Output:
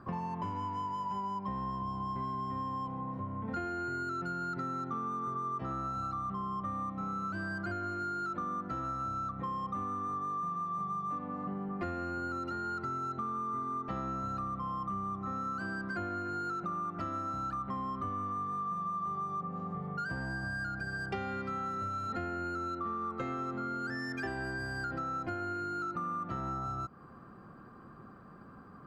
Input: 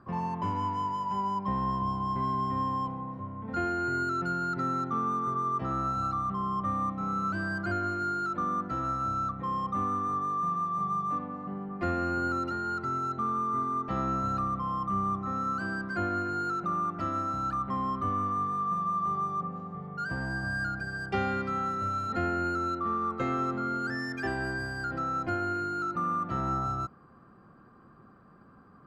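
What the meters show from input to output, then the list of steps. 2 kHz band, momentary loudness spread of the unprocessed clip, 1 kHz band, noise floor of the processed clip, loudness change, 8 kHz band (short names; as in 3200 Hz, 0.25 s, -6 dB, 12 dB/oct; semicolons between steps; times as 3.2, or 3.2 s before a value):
-4.5 dB, 4 LU, -6.0 dB, -52 dBFS, -5.5 dB, n/a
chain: compressor, threshold -38 dBFS, peak gain reduction 12.5 dB; gain +3.5 dB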